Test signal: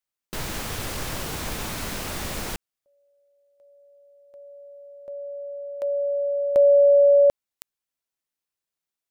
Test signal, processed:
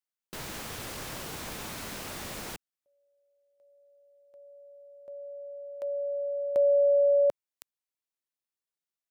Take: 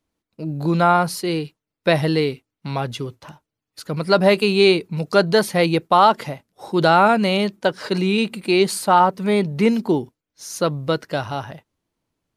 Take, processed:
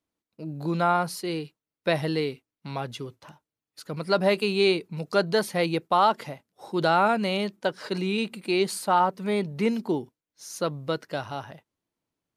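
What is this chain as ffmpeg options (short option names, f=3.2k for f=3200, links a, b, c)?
-af "lowshelf=f=69:g=-11.5,volume=-7dB"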